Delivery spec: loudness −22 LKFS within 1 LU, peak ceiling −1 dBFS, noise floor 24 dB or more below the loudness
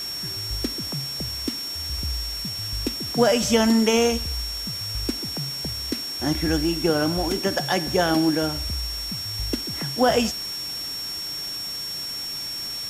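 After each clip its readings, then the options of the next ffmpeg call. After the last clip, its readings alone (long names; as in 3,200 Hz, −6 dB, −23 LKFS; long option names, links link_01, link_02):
interfering tone 5,500 Hz; level of the tone −29 dBFS; background noise floor −31 dBFS; target noise floor −48 dBFS; integrated loudness −24.0 LKFS; sample peak −7.5 dBFS; target loudness −22.0 LKFS
→ -af "bandreject=frequency=5500:width=30"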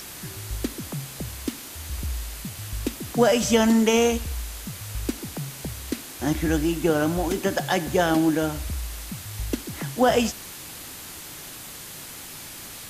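interfering tone none found; background noise floor −40 dBFS; target noise floor −50 dBFS
→ -af "afftdn=noise_reduction=10:noise_floor=-40"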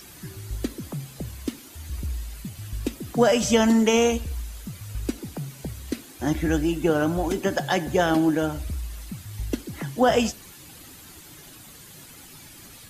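background noise floor −46 dBFS; target noise floor −49 dBFS
→ -af "afftdn=noise_reduction=6:noise_floor=-46"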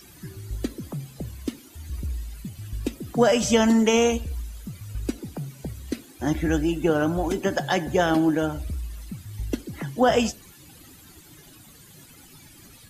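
background noise floor −50 dBFS; integrated loudness −25.0 LKFS; sample peak −7.5 dBFS; target loudness −22.0 LKFS
→ -af "volume=3dB"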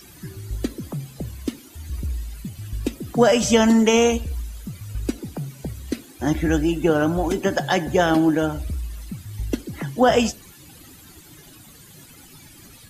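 integrated loudness −22.0 LKFS; sample peak −4.5 dBFS; background noise floor −47 dBFS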